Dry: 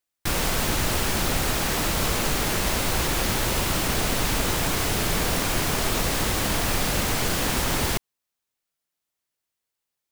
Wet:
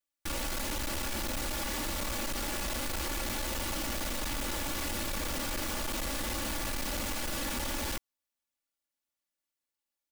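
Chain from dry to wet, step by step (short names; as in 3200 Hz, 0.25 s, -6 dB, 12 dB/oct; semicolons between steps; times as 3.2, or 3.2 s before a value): comb 3.5 ms, depth 92%; hard clip -22.5 dBFS, distortion -8 dB; gain -9 dB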